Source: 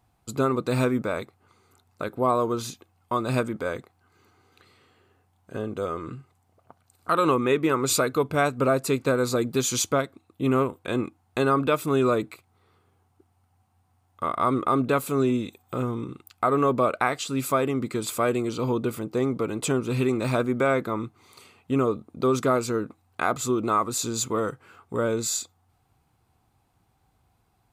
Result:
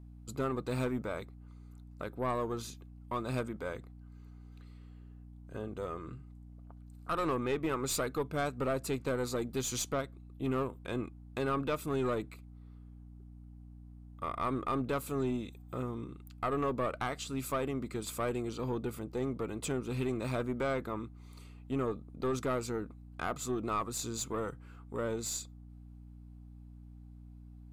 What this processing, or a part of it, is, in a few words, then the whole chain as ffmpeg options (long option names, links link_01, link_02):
valve amplifier with mains hum: -af "aeval=exprs='(tanh(6.31*val(0)+0.35)-tanh(0.35))/6.31':channel_layout=same,aeval=exprs='val(0)+0.00891*(sin(2*PI*60*n/s)+sin(2*PI*2*60*n/s)/2+sin(2*PI*3*60*n/s)/3+sin(2*PI*4*60*n/s)/4+sin(2*PI*5*60*n/s)/5)':channel_layout=same,volume=-8.5dB"